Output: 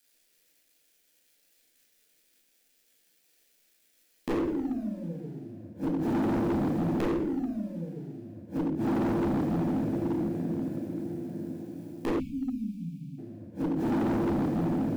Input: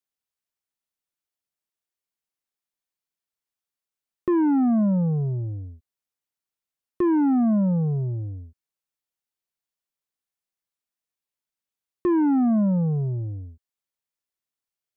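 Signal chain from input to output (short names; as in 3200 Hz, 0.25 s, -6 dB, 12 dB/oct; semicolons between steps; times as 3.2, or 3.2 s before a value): G.711 law mismatch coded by mu; high shelf 2000 Hz +10.5 dB; notches 60/120/180/240/300 Hz; diffused feedback echo 0.746 s, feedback 51%, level -14 dB; flipped gate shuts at -25 dBFS, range -31 dB; reverb RT60 0.80 s, pre-delay 12 ms, DRR -5 dB; spectral delete 12.2–13.18, 300–2200 Hz; graphic EQ 125/250/500/1000/2000 Hz -10/+7/+8/-10/+4 dB; hard clip -28.5 dBFS, distortion -7 dB; gain +3.5 dB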